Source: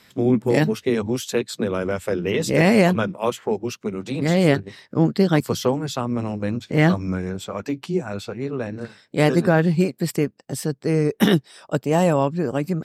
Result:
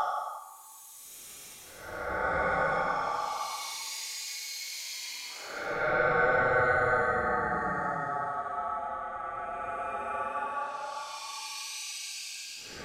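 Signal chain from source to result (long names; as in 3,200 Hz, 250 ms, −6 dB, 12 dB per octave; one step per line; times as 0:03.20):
ring modulation 1,000 Hz
extreme stretch with random phases 23×, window 0.05 s, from 0:05.40
level −6 dB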